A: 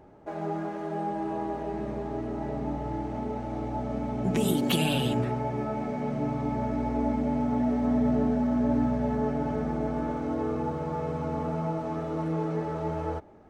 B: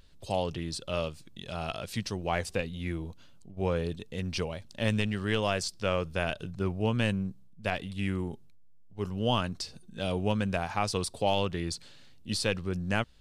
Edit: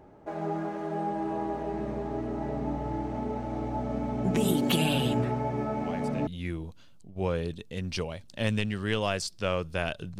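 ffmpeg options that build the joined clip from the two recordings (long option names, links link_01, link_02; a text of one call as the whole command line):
ffmpeg -i cue0.wav -i cue1.wav -filter_complex "[1:a]asplit=2[link_01][link_02];[0:a]apad=whole_dur=10.19,atrim=end=10.19,atrim=end=6.272[link_03];[link_02]atrim=start=2.678:end=6.6[link_04];[link_01]atrim=start=2.18:end=2.68,asetpts=PTS-STARTPTS,volume=-12dB,afade=type=in:duration=0.004:curve=hsin,afade=type=out:start_time=0.496:duration=0.004:curve=hsin,adelay=254457S[link_05];[link_03][link_04]acrossfade=duration=0.004:curve1=hsin:curve2=hsin[link_06];[link_06][link_05]amix=inputs=2:normalize=0" out.wav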